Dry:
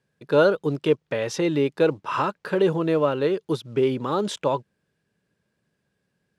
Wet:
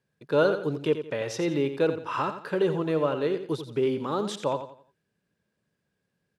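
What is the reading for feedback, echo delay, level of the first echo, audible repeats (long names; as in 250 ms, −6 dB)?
33%, 87 ms, −10.0 dB, 3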